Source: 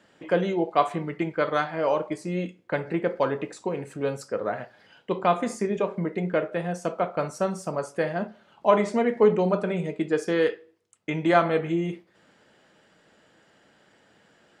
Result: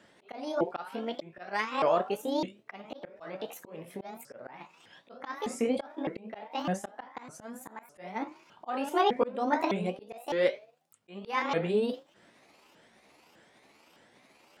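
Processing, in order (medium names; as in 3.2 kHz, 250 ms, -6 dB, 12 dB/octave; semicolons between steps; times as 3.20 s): sawtooth pitch modulation +9.5 st, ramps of 607 ms; slow attack 384 ms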